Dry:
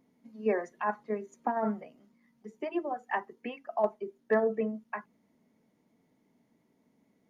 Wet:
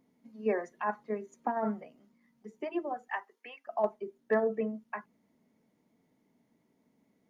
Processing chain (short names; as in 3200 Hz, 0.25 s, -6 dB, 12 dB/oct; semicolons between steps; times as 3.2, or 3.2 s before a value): 3.08–3.67 Bessel high-pass 980 Hz, order 2; gain -1.5 dB